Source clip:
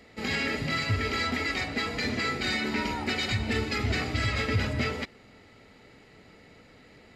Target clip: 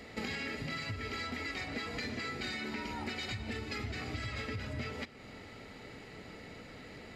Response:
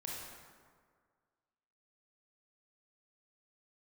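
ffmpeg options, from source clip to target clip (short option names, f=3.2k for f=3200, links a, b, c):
-filter_complex "[0:a]acompressor=threshold=-40dB:ratio=16,asplit=2[a][b];[1:a]atrim=start_sample=2205,asetrate=66150,aresample=44100[c];[b][c]afir=irnorm=-1:irlink=0,volume=-10dB[d];[a][d]amix=inputs=2:normalize=0,volume=3.5dB"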